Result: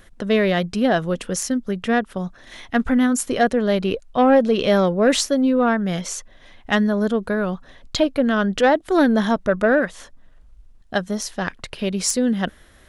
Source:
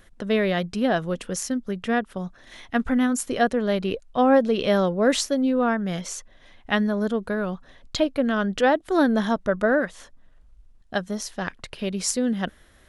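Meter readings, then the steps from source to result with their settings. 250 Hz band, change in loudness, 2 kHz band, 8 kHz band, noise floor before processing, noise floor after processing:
+4.0 dB, +3.5 dB, +3.5 dB, +4.5 dB, −54 dBFS, −49 dBFS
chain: soft clipping −10 dBFS, distortion −22 dB
level +4.5 dB

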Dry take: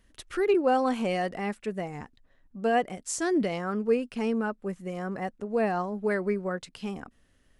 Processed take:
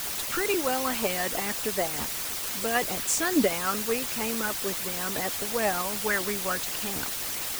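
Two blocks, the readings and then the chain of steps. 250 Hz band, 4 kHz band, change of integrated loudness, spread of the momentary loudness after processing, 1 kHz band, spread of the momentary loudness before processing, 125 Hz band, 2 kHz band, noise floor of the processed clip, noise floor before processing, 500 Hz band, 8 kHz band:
−3.0 dB, +12.5 dB, +2.0 dB, 4 LU, −0.5 dB, 12 LU, −3.5 dB, +5.5 dB, −33 dBFS, −65 dBFS, −3.0 dB, +13.0 dB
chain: bit-depth reduction 6 bits, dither triangular
harmonic and percussive parts rebalanced harmonic −14 dB
level +8 dB

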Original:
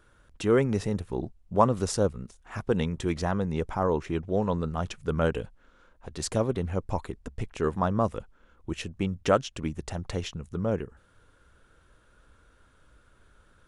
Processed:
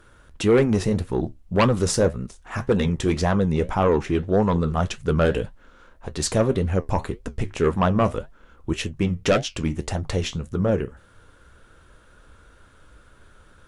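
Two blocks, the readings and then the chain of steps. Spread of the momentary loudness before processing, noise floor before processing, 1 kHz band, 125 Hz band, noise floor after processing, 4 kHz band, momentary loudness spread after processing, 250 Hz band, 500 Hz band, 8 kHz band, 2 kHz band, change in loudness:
13 LU, −62 dBFS, +4.0 dB, +7.0 dB, −53 dBFS, +8.0 dB, 11 LU, +6.5 dB, +6.0 dB, +7.5 dB, +7.5 dB, +6.0 dB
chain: in parallel at −5 dB: sine wavefolder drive 11 dB, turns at −6.5 dBFS
on the sum: flanger 1.8 Hz, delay 8.4 ms, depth 7 ms, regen −63%

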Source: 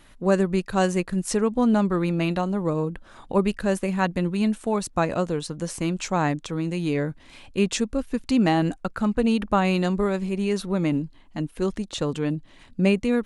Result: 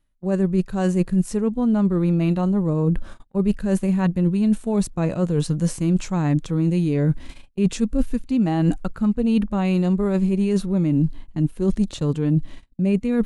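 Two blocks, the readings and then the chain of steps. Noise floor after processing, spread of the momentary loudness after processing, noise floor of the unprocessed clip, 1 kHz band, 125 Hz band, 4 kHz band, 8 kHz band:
−47 dBFS, 4 LU, −51 dBFS, −5.5 dB, +7.0 dB, −5.0 dB, −2.5 dB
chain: high-shelf EQ 8,200 Hz +7 dB
harmonic and percussive parts rebalanced percussive −9 dB
reversed playback
downward compressor 8 to 1, threshold −31 dBFS, peak gain reduction 16.5 dB
reversed playback
low-shelf EQ 240 Hz +11.5 dB
noise gate −40 dBFS, range −30 dB
level +8.5 dB

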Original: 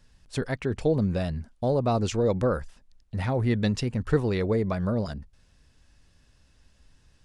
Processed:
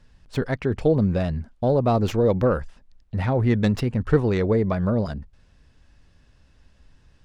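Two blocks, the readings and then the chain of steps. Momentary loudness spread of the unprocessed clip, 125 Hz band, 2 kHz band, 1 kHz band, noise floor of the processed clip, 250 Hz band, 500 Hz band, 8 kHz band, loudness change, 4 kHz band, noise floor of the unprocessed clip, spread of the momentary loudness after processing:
9 LU, +4.5 dB, +3.0 dB, +4.0 dB, −58 dBFS, +4.5 dB, +4.5 dB, can't be measured, +4.5 dB, −0.5 dB, −62 dBFS, 9 LU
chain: stylus tracing distortion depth 0.068 ms
low-pass filter 2,800 Hz 6 dB per octave
level +4.5 dB

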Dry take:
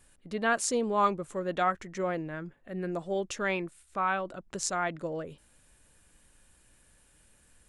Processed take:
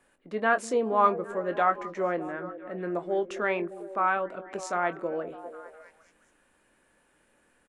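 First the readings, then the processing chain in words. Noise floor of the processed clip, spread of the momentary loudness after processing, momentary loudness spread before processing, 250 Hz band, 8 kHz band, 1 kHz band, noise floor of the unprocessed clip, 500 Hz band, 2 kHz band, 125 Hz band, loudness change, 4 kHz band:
−68 dBFS, 13 LU, 12 LU, +0.5 dB, −10.0 dB, +3.5 dB, −64 dBFS, +4.0 dB, +2.5 dB, −4.0 dB, +2.5 dB, −6.0 dB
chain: three-way crossover with the lows and the highs turned down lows −18 dB, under 220 Hz, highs −14 dB, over 2,400 Hz
double-tracking delay 23 ms −11 dB
echo through a band-pass that steps 202 ms, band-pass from 280 Hz, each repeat 0.7 octaves, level −9 dB
level +3.5 dB

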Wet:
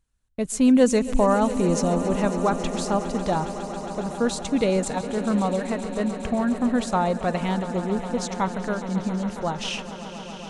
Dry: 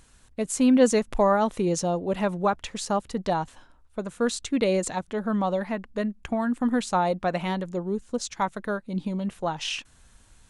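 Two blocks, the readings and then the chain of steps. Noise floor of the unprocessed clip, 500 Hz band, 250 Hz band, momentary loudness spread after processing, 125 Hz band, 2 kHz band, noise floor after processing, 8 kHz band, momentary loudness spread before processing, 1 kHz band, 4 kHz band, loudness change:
−57 dBFS, +1.5 dB, +3.5 dB, 10 LU, +4.5 dB, +1.0 dB, −38 dBFS, +1.0 dB, 10 LU, +1.0 dB, +1.0 dB, +2.0 dB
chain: noise gate −45 dBFS, range −24 dB
low-shelf EQ 140 Hz +9.5 dB
echo that builds up and dies away 137 ms, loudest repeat 5, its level −15.5 dB

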